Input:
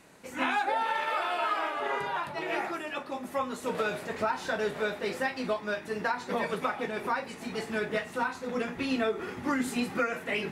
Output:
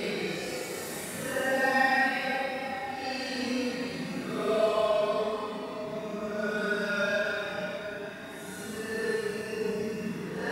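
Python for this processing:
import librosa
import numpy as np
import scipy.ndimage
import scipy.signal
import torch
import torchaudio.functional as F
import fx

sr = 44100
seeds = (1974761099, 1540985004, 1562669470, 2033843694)

y = fx.high_shelf(x, sr, hz=5900.0, db=8.5)
y = fx.room_shoebox(y, sr, seeds[0], volume_m3=300.0, walls='mixed', distance_m=0.56)
y = fx.paulstretch(y, sr, seeds[1], factor=11.0, window_s=0.05, from_s=5.09)
y = fx.doubler(y, sr, ms=32.0, db=-2.5)
y = y * librosa.db_to_amplitude(-2.0)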